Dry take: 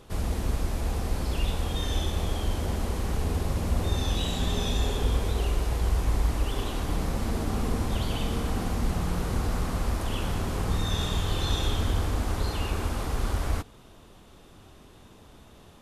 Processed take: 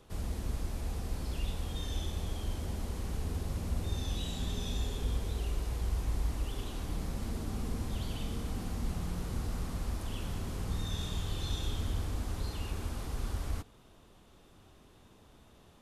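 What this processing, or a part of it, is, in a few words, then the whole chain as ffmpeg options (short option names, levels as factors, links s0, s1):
one-band saturation: -filter_complex "[0:a]acrossover=split=320|3100[s0][s1][s2];[s1]asoftclip=type=tanh:threshold=0.0112[s3];[s0][s3][s2]amix=inputs=3:normalize=0,volume=0.422"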